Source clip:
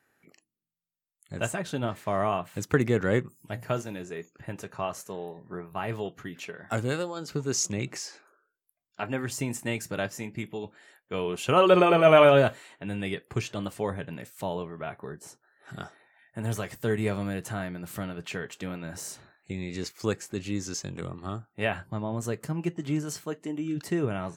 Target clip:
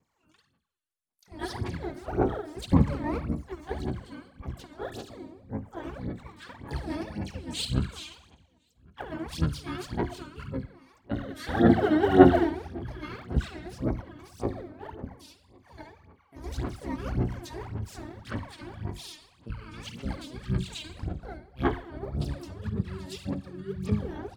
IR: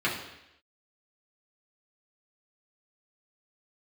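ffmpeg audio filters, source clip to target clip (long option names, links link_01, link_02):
-filter_complex "[0:a]asetrate=26990,aresample=44100,atempo=1.63392,adynamicequalizer=threshold=0.00631:dfrequency=1100:dqfactor=1.6:tfrequency=1100:tqfactor=1.6:attack=5:release=100:ratio=0.375:range=2:mode=cutabove:tftype=bell,asplit=2[link_01][link_02];[link_02]adelay=1050,volume=-28dB,highshelf=frequency=4000:gain=-23.6[link_03];[link_01][link_03]amix=inputs=2:normalize=0,asplit=2[link_04][link_05];[1:a]atrim=start_sample=2205,adelay=52[link_06];[link_05][link_06]afir=irnorm=-1:irlink=0,volume=-17dB[link_07];[link_04][link_07]amix=inputs=2:normalize=0,asplit=3[link_08][link_09][link_10];[link_09]asetrate=33038,aresample=44100,atempo=1.33484,volume=-5dB[link_11];[link_10]asetrate=88200,aresample=44100,atempo=0.5,volume=-7dB[link_12];[link_08][link_11][link_12]amix=inputs=3:normalize=0,aphaser=in_gain=1:out_gain=1:delay=3.3:decay=0.77:speed=1.8:type=sinusoidal,volume=-10dB"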